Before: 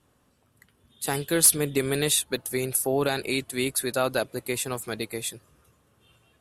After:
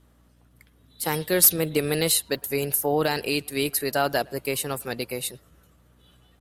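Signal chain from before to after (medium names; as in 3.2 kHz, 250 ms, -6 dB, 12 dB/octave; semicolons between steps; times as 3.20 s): pitch shift +1.5 st; speakerphone echo 110 ms, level -26 dB; hum 60 Hz, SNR 33 dB; trim +1.5 dB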